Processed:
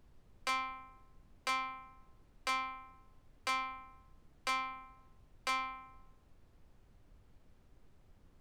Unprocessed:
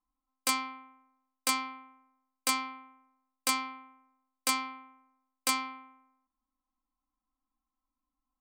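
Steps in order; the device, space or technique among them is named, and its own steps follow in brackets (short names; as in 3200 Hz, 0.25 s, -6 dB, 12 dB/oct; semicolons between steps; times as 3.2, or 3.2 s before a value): aircraft cabin announcement (BPF 500–3500 Hz; soft clip -29 dBFS, distortion -13 dB; brown noise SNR 17 dB)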